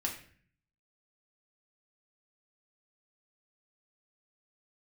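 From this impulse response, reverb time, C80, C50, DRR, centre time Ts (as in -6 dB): 0.50 s, 11.5 dB, 8.0 dB, -0.5 dB, 21 ms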